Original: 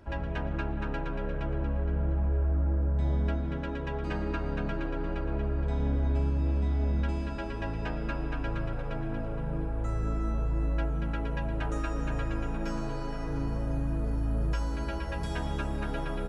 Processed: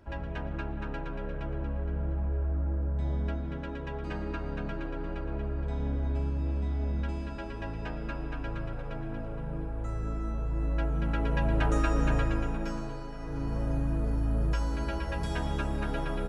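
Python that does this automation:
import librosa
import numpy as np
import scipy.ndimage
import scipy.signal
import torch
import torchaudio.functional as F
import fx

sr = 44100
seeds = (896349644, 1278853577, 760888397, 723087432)

y = fx.gain(x, sr, db=fx.line((10.4, -3.0), (11.52, 5.5), (12.11, 5.5), (13.12, -6.0), (13.61, 1.0)))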